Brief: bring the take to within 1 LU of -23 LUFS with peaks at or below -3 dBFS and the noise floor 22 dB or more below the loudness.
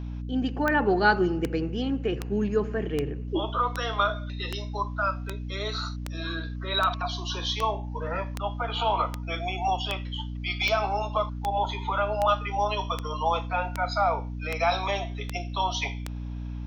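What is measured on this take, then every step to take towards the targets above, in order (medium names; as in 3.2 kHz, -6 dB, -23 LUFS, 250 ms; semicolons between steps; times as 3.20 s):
clicks found 21; hum 60 Hz; highest harmonic 300 Hz; hum level -32 dBFS; loudness -28.0 LUFS; peak level -8.5 dBFS; loudness target -23.0 LUFS
-> de-click; hum notches 60/120/180/240/300 Hz; trim +5 dB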